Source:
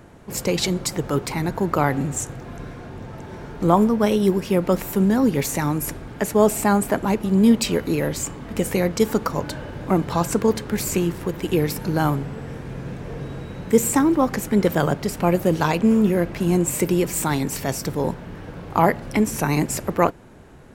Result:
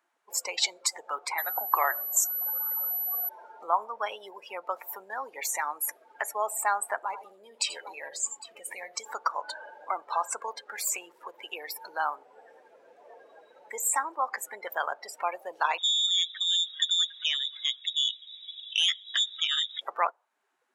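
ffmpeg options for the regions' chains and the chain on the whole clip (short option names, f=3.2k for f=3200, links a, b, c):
-filter_complex "[0:a]asettb=1/sr,asplit=3[a][b][c];[a]atrim=end=1.384[d];[b]atrim=start=1.38:end=3.29,asetpts=PTS-STARTPTS,afade=t=in:d=0.004:c=qsin,afade=t=out:st=1.906:d=0.004:c=qsin,aeval=exprs='val(0)+0.02*sin(2*PI*12000*n/s)':c=same,acontrast=22,afreqshift=-160[e];[c]atrim=start=3.286[f];[d][e]acrossfade=d=0.004:c1=hsin:c2=qsin[g];[g][f]acrossfade=d=0.004:c1=qsin:c2=hsin,asettb=1/sr,asplit=3[h][i][j];[h]atrim=end=6.994[k];[i]atrim=start=6.99:end=9.05,asetpts=PTS-STARTPTS,afade=t=in:d=0.004:c=qsin,afade=t=out:st=2.056:d=0.004:c=qsin,asubboost=boost=10:cutoff=130,acompressor=threshold=-19dB:ratio=5:attack=3.2:release=140:knee=1:detection=peak,aecho=1:1:82|96|806:0.282|0.188|0.266,atrim=end_sample=90846[l];[j]atrim=start=9.046[m];[k][l]acrossfade=d=0.004:c1=hsin:c2=qsin[n];[n][m]acrossfade=d=0.004:c1=qsin:c2=hsin,asettb=1/sr,asplit=3[o][p][q];[o]atrim=end=15.784[r];[p]atrim=start=15.78:end=19.81,asetpts=PTS-STARTPTS,afade=t=in:d=0.004:c=qsin,afade=t=out:st=4.026:d=0.004:c=qsin,lowshelf=f=320:t=q:w=1.5:g=-6.5,lowpass=f=3.3k:t=q:w=0.5098,lowpass=f=3.3k:t=q:w=0.6013,lowpass=f=3.3k:t=q:w=0.9,lowpass=f=3.3k:t=q:w=2.563,afreqshift=-3900,aeval=exprs='(tanh(7.08*val(0)+0.75)-tanh(0.75))/7.08':c=same[s];[q]atrim=start=19.806[t];[r][s]acrossfade=d=0.004:c1=hsin:c2=qsin[u];[u][t]acrossfade=d=0.004:c1=qsin:c2=hsin,acompressor=threshold=-33dB:ratio=1.5,afftdn=nr=26:nf=-35,highpass=f=810:w=0.5412,highpass=f=810:w=1.3066,volume=4.5dB"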